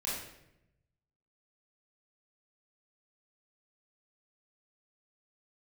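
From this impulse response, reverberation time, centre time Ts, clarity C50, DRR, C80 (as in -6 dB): 0.85 s, 63 ms, 0.5 dB, -8.0 dB, 4.5 dB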